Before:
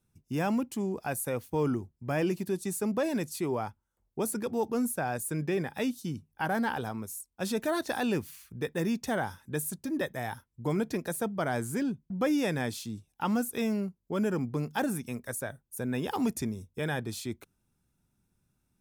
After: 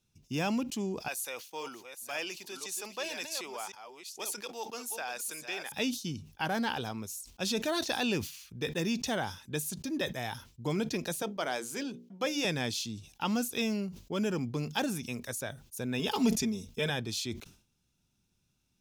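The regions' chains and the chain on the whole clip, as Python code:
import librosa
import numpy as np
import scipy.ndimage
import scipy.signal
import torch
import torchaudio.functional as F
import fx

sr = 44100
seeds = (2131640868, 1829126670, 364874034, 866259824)

y = fx.chain(x, sr, fx.reverse_delay(ms=528, wet_db=-8.0),
    fx.bessel_highpass(hz=910.0, order=2), at=(1.08, 5.72))
y = fx.chain(y, sr, fx.highpass(hz=330.0, slope=12),
    fx.hum_notches(base_hz=60, count=9), at=(11.22, 12.45))
y = fx.chain(y, sr, fx.comb(ms=4.6, depth=0.79),
    fx.sustainer(db_per_s=130.0), at=(15.99, 16.9))
y = fx.band_shelf(y, sr, hz=4100.0, db=10.0, octaves=1.7)
y = fx.sustainer(y, sr, db_per_s=120.0)
y = y * librosa.db_to_amplitude(-2.5)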